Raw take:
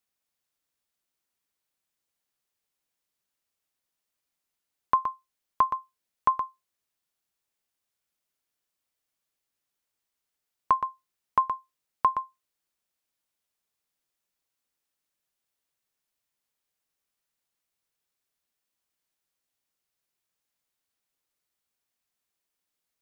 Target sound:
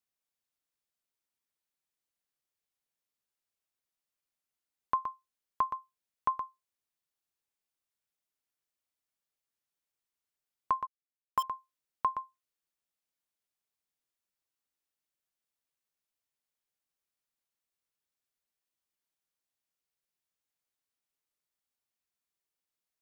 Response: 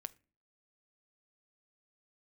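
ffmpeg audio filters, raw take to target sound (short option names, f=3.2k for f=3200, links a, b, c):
-filter_complex "[0:a]asplit=3[a][b][c];[a]afade=t=out:st=10.85:d=0.02[d];[b]aeval=exprs='val(0)*gte(abs(val(0)),0.0501)':c=same,afade=t=in:st=10.85:d=0.02,afade=t=out:st=11.42:d=0.02[e];[c]afade=t=in:st=11.42:d=0.02[f];[d][e][f]amix=inputs=3:normalize=0,volume=-7dB"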